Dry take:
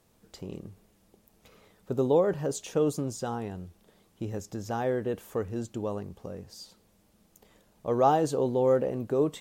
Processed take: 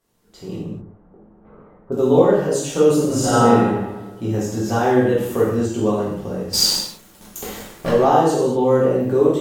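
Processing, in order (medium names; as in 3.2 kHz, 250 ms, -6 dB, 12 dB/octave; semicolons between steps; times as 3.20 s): 0.55–1.92 s: low-pass 1.3 kHz 24 dB/octave; 3.04–3.53 s: reverb throw, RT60 1.2 s, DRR -10 dB; 6.53–7.89 s: waveshaping leveller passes 5; level rider gain up to 15 dB; gated-style reverb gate 280 ms falling, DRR -8 dB; trim -9 dB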